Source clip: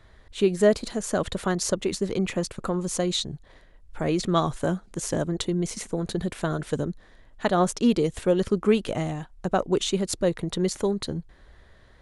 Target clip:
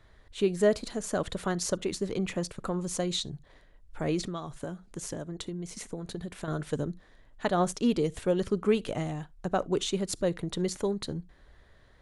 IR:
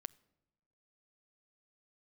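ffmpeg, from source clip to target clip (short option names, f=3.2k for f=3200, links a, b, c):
-filter_complex "[1:a]atrim=start_sample=2205,atrim=end_sample=3528[a];[0:a][a]afir=irnorm=-1:irlink=0,asettb=1/sr,asplit=3[b][c][d];[b]atrim=end=4.214[e];[c]atrim=start=4.21:end=6.48,asetpts=PTS-STARTPTS,afade=t=in:d=0.004:c=qsin,afade=t=out:st=2.266:d=0.004:c=qsin,acompressor=threshold=-34dB:ratio=5[f];[d]atrim=start=6.476[g];[e][f]acrossfade=d=0.004:c1=hsin:c2=qsin[h];[h][g]acrossfade=d=0.004:c1=qsin:c2=hsin"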